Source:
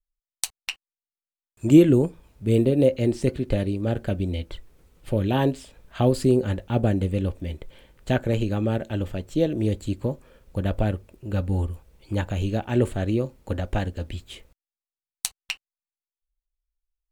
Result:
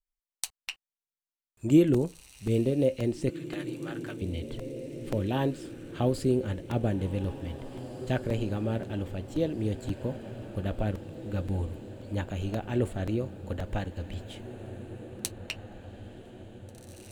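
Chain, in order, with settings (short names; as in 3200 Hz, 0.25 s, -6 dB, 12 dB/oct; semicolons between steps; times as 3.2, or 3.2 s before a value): 3.3–4.22 resonant high-pass 1200 Hz, resonance Q 1.7; diffused feedback echo 1.951 s, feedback 56%, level -12 dB; crackling interface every 0.53 s, samples 128, repeat, from 0.35; gain -6.5 dB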